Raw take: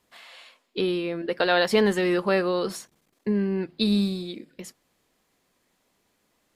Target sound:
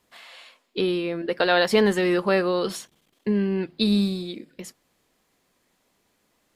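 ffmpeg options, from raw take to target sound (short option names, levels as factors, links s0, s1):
-filter_complex "[0:a]asettb=1/sr,asplit=3[s0][s1][s2];[s0]atrim=end=2.644[s3];[s1]atrim=start=2.64:end=3.69,asetpts=PTS-STARTPTS,afade=t=in:d=0.004:c=qsin,afade=t=out:st=1.046:d=0.004:c=qsin,equalizer=f=3200:w=2.7:g=8.5[s4];[s2]atrim=start=3.686[s5];[s3][s4]acrossfade=d=0.004:c1=hsin:c2=qsin[s6];[s6][s5]acrossfade=d=0.004:c1=qsin:c2=hsin,volume=1.19"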